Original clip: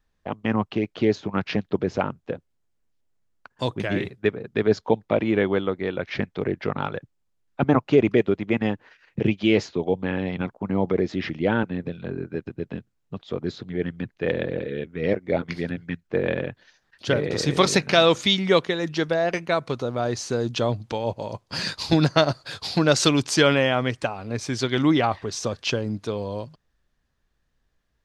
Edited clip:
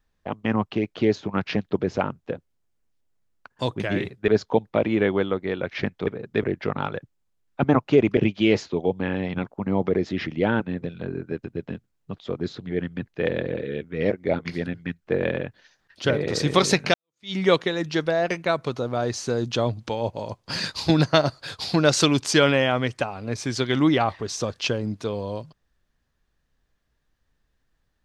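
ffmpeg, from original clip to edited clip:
-filter_complex "[0:a]asplit=6[s0][s1][s2][s3][s4][s5];[s0]atrim=end=4.282[s6];[s1]atrim=start=4.638:end=6.432[s7];[s2]atrim=start=4.278:end=4.642[s8];[s3]atrim=start=6.428:end=8.172[s9];[s4]atrim=start=9.198:end=17.97,asetpts=PTS-STARTPTS,afade=t=out:st=8.768:d=0.004:c=hsin[s10];[s5]atrim=start=17.97,asetpts=PTS-STARTPTS,afade=t=in:d=0.41:c=exp[s11];[s6][s7]acrossfade=d=0.004:c1=hsin:c2=hsin[s12];[s12][s8]acrossfade=d=0.004:c1=hsin:c2=hsin[s13];[s13][s9]acrossfade=d=0.004:c1=hsin:c2=hsin[s14];[s10][s11]concat=n=2:v=0:a=1[s15];[s14][s15]acrossfade=d=0.004:c1=hsin:c2=hsin"

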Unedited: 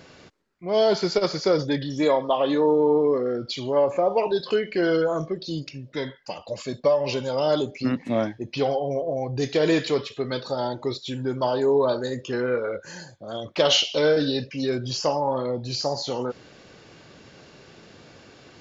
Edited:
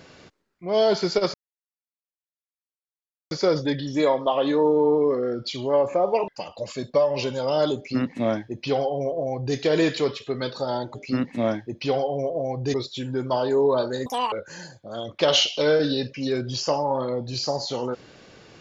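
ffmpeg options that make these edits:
-filter_complex "[0:a]asplit=7[s0][s1][s2][s3][s4][s5][s6];[s0]atrim=end=1.34,asetpts=PTS-STARTPTS,afade=t=out:st=1.336:d=0.004:c=hsin,apad=pad_dur=1.97[s7];[s1]atrim=start=1.34:end=4.312,asetpts=PTS-STARTPTS,afade=t=in:d=0.004:c=hsin[s8];[s2]atrim=start=6.178:end=10.852[s9];[s3]atrim=start=7.668:end=9.462[s10];[s4]atrim=start=10.848:end=12.174[s11];[s5]atrim=start=12.17:end=12.69,asetpts=PTS-STARTPTS,asetrate=87759,aresample=44100[s12];[s6]atrim=start=12.686[s13];[s7][s8]concat=n=2:v=0:a=1[s14];[s14][s9]acrossfade=d=0.004:c1=hsin:c2=hsin[s15];[s15][s10]acrossfade=d=0.004:c1=hsin:c2=hsin[s16];[s16][s11]acrossfade=d=0.004:c1=hsin:c2=hsin[s17];[s17][s12]acrossfade=d=0.004:c1=hsin:c2=hsin[s18];[s18][s13]acrossfade=d=0.004:c1=hsin:c2=hsin"

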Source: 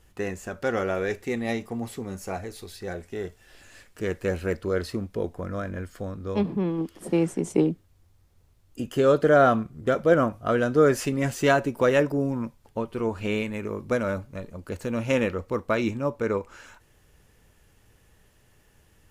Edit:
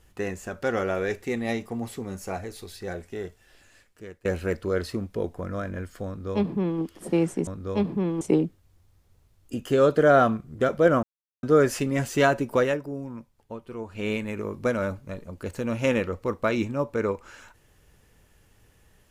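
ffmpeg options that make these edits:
-filter_complex "[0:a]asplit=8[s0][s1][s2][s3][s4][s5][s6][s7];[s0]atrim=end=4.25,asetpts=PTS-STARTPTS,afade=t=out:st=2.99:d=1.26:silence=0.0891251[s8];[s1]atrim=start=4.25:end=7.472,asetpts=PTS-STARTPTS,afade=t=in:d=0.004:c=hsin:silence=0.0891251[s9];[s2]atrim=start=6.068:end=6.812[s10];[s3]atrim=start=7.468:end=10.29,asetpts=PTS-STARTPTS,afade=t=out:st=2.818:d=0.004:c=hsin[s11];[s4]atrim=start=10.29:end=10.69,asetpts=PTS-STARTPTS,volume=0[s12];[s5]atrim=start=10.69:end=12.04,asetpts=PTS-STARTPTS,afade=t=in:d=0.004:c=hsin,afade=t=out:st=1.14:d=0.21:silence=0.375837[s13];[s6]atrim=start=12.04:end=13.18,asetpts=PTS-STARTPTS,volume=0.376[s14];[s7]atrim=start=13.18,asetpts=PTS-STARTPTS,afade=t=in:d=0.21:silence=0.375837[s15];[s8][s9]concat=n=2:v=0:a=1[s16];[s16][s10]acrossfade=d=0.004:c1=hsin:c2=hsin[s17];[s11][s12][s13][s14][s15]concat=n=5:v=0:a=1[s18];[s17][s18]acrossfade=d=0.004:c1=hsin:c2=hsin"

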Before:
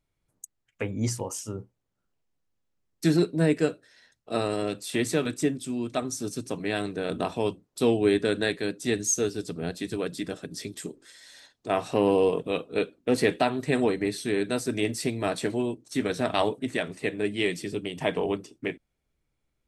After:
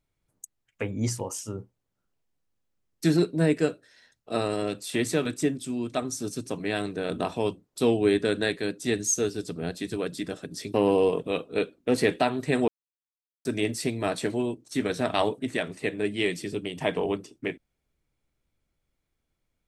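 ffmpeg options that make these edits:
-filter_complex "[0:a]asplit=4[s0][s1][s2][s3];[s0]atrim=end=10.742[s4];[s1]atrim=start=11.938:end=13.88,asetpts=PTS-STARTPTS,afade=t=out:st=1.938:d=0.004:c=hsin[s5];[s2]atrim=start=13.88:end=14.65,asetpts=PTS-STARTPTS,volume=0[s6];[s3]atrim=start=14.65,asetpts=PTS-STARTPTS,afade=t=in:d=0.004:c=hsin[s7];[s5][s6][s7]concat=n=3:v=0:a=1[s8];[s4][s8]acrossfade=d=0.004:c1=hsin:c2=hsin"

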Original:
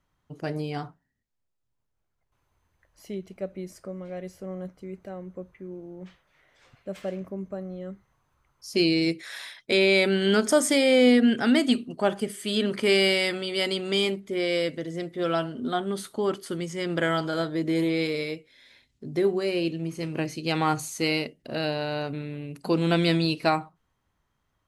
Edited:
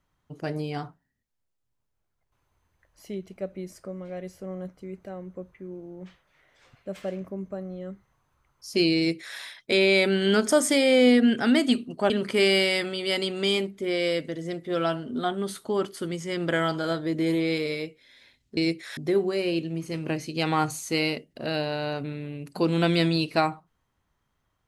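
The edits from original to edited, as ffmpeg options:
-filter_complex "[0:a]asplit=4[s0][s1][s2][s3];[s0]atrim=end=12.102[s4];[s1]atrim=start=12.588:end=19.062[s5];[s2]atrim=start=8.968:end=9.372[s6];[s3]atrim=start=19.058[s7];[s4][s5]acrossfade=d=0.004:c1=hsin:c2=hsin[s8];[s8][s6]acrossfade=d=0.004:c1=hsin:c2=hsin[s9];[s9][s7]acrossfade=d=0.004:c1=hsin:c2=hsin"

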